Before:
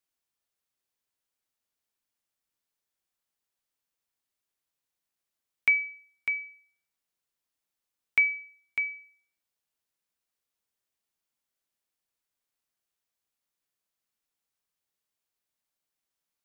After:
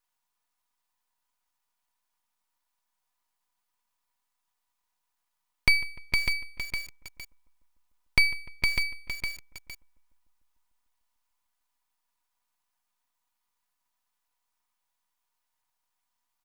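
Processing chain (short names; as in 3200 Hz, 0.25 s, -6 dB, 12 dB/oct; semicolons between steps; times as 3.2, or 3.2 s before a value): resonant high-pass 930 Hz, resonance Q 4.9; comb 4.1 ms, depth 56%; half-wave rectifier; darkening echo 0.149 s, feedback 74%, low-pass 2300 Hz, level -19 dB; lo-fi delay 0.46 s, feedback 35%, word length 7-bit, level -4.5 dB; gain +5.5 dB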